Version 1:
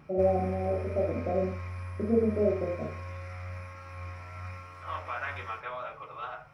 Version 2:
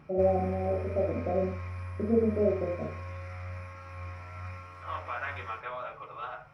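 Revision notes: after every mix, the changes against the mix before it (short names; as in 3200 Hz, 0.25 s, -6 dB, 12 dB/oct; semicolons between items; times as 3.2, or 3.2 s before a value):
master: add high shelf 5400 Hz -5 dB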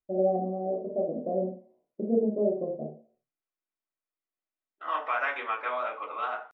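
second voice: send +7.5 dB; background: muted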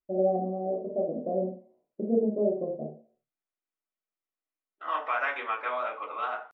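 none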